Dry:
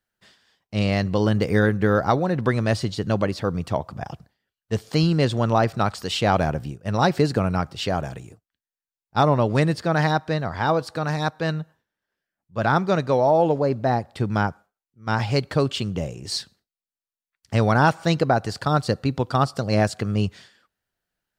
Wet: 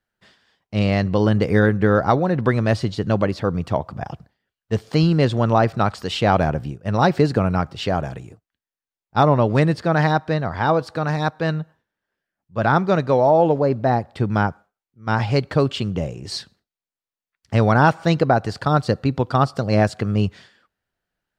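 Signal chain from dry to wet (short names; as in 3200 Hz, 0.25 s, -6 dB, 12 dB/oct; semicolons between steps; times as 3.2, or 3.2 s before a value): high shelf 5000 Hz -10 dB; gain +3 dB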